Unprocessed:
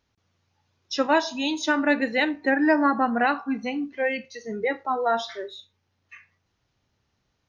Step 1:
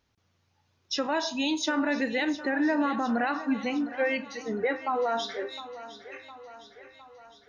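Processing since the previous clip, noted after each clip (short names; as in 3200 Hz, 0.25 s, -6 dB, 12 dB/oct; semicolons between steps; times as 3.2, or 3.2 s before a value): limiter -18.5 dBFS, peak gain reduction 9.5 dB; thinning echo 0.709 s, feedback 61%, high-pass 230 Hz, level -14 dB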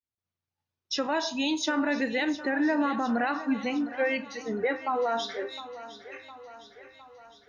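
expander -58 dBFS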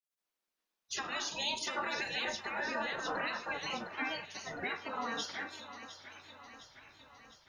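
spectral gate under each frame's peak -15 dB weak; in parallel at +1.5 dB: limiter -31.5 dBFS, peak gain reduction 9 dB; on the sum: gain -3 dB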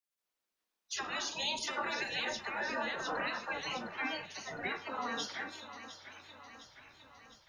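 dispersion lows, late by 42 ms, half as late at 380 Hz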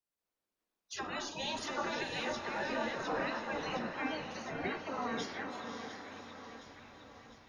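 tilt shelf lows +5.5 dB, about 900 Hz; wow and flutter 16 cents; diffused feedback echo 0.561 s, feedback 45%, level -7 dB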